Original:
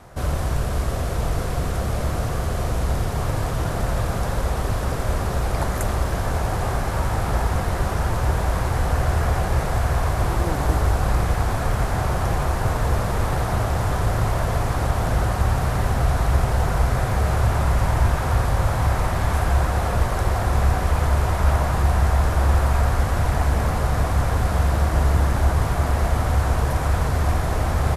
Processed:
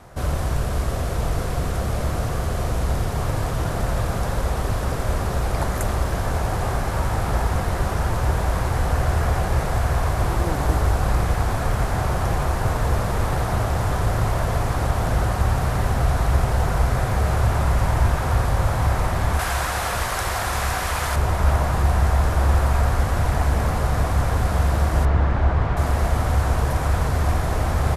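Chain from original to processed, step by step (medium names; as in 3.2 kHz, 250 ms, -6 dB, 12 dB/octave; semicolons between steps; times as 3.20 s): 19.39–21.16 s: tilt shelf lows -8 dB, about 790 Hz; 25.05–25.77 s: low-pass 2.9 kHz 12 dB/octave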